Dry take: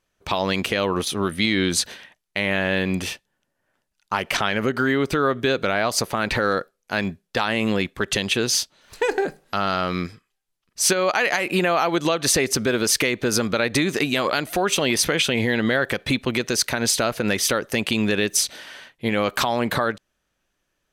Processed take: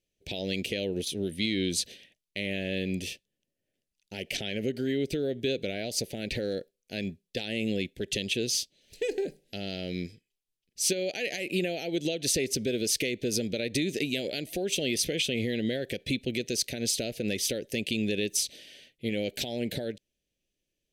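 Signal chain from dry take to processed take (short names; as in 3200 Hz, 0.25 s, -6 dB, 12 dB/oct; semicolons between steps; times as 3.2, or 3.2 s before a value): Chebyshev band-stop 490–2600 Hz, order 2; gain -7 dB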